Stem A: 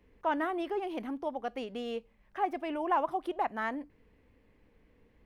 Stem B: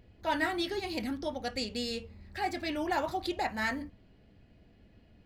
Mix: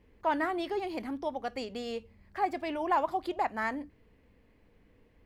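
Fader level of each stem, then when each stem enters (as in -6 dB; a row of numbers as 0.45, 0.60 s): +0.5, -11.0 dB; 0.00, 0.00 s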